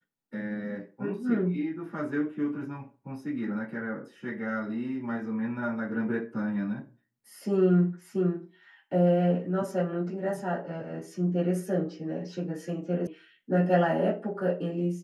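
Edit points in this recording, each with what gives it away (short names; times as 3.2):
13.07 sound cut off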